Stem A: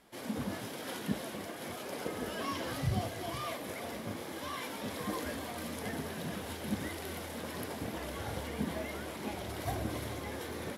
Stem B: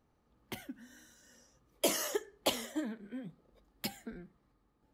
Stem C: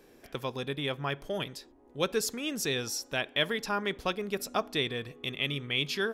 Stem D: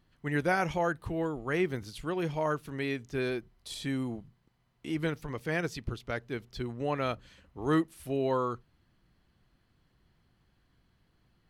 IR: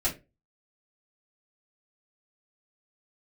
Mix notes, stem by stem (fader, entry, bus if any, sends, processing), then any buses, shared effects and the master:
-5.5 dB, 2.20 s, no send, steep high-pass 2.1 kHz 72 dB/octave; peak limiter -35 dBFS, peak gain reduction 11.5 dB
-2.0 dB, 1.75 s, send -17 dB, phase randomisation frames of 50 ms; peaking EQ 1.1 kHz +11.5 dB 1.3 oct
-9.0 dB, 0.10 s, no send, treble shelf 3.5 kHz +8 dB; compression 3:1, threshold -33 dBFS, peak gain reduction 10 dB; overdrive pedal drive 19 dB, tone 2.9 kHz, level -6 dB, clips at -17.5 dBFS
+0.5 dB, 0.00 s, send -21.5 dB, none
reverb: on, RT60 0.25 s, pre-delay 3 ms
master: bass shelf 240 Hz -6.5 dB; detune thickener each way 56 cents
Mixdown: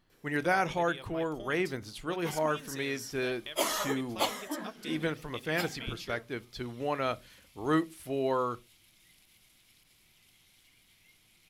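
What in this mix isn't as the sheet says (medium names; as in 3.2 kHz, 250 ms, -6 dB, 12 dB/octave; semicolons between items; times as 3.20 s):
stem A -5.5 dB -> -15.0 dB; stem C: missing overdrive pedal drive 19 dB, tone 2.9 kHz, level -6 dB, clips at -17.5 dBFS; master: missing detune thickener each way 56 cents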